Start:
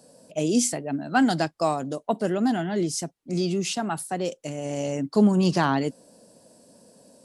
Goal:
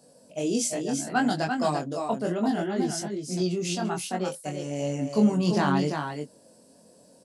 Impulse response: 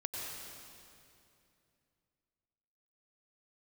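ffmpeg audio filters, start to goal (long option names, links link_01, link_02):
-af "aecho=1:1:342:0.531,flanger=delay=20:depth=3.1:speed=0.66"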